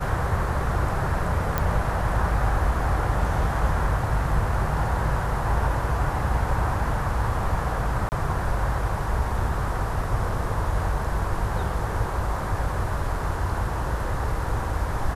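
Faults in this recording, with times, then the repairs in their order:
1.58 s: pop -9 dBFS
8.09–8.12 s: dropout 29 ms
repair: de-click; interpolate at 8.09 s, 29 ms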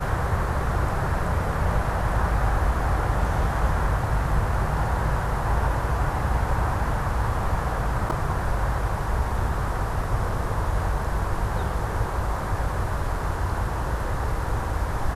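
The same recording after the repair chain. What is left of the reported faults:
nothing left

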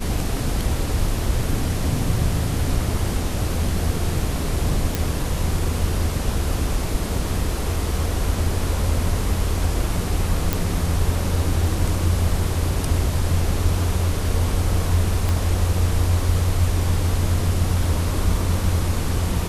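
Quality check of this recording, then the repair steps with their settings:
4.95 s: pop
10.53 s: pop
15.29 s: pop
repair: de-click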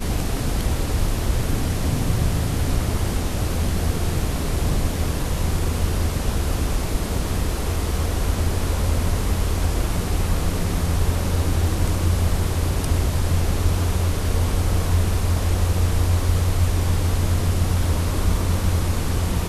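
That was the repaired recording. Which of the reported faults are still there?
15.29 s: pop

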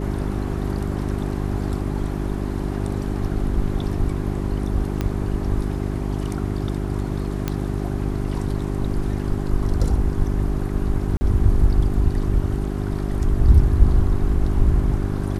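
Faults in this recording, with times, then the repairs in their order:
hum 50 Hz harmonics 8 -25 dBFS
5.01 s: pop -10 dBFS
7.48 s: pop -9 dBFS
11.17–11.21 s: dropout 40 ms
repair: de-click; de-hum 50 Hz, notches 8; interpolate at 11.17 s, 40 ms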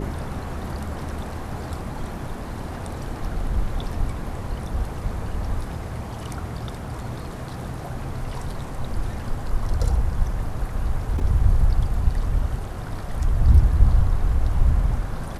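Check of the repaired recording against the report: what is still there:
5.01 s: pop

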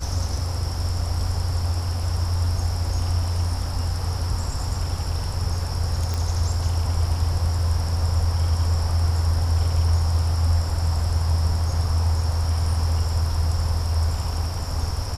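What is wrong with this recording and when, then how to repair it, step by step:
6.14 s: pop -13 dBFS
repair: de-click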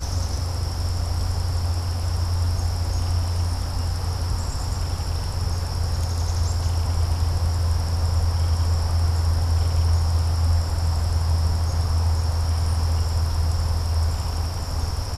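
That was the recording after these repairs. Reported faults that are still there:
nothing left

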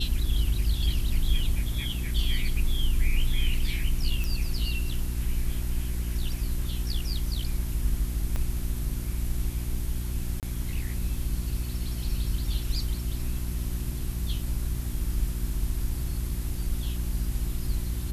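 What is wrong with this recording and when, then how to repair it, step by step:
hum 60 Hz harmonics 6 -32 dBFS
4.24 s: pop
8.36 s: pop -18 dBFS
10.40–10.43 s: dropout 28 ms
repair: de-click; de-hum 60 Hz, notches 6; interpolate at 10.40 s, 28 ms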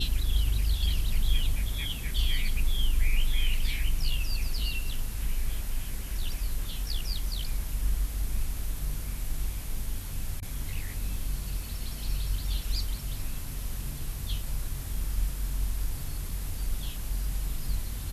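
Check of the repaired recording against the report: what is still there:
8.36 s: pop

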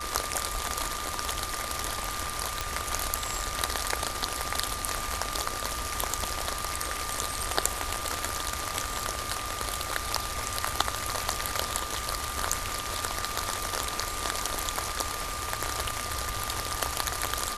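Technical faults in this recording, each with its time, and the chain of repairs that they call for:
whine 1.2 kHz -37 dBFS
2.61 s: pop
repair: de-click; band-stop 1.2 kHz, Q 30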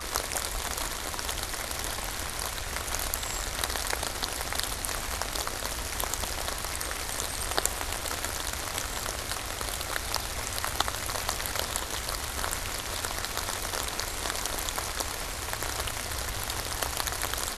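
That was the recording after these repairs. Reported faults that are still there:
nothing left

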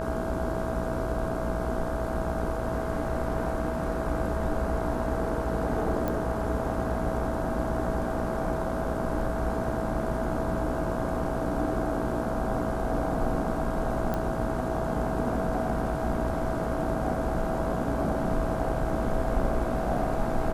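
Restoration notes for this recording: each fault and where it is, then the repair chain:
buzz 60 Hz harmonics 27 -34 dBFS
whine 650 Hz -33 dBFS
6.08 s: pop -17 dBFS
14.14 s: pop -17 dBFS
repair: de-click; de-hum 60 Hz, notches 27; band-stop 650 Hz, Q 30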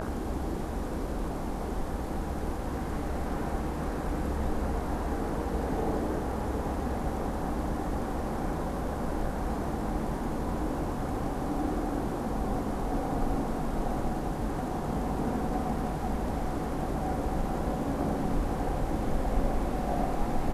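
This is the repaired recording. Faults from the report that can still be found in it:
nothing left

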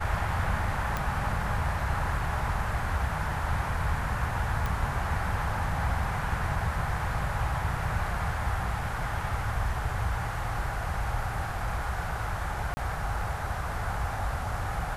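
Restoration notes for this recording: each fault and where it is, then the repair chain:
0.97 s: pop -15 dBFS
4.66 s: pop
12.74–12.77 s: dropout 30 ms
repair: de-click; interpolate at 12.74 s, 30 ms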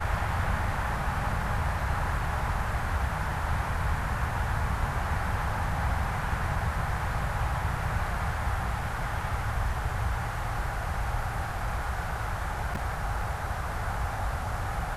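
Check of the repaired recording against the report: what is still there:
nothing left

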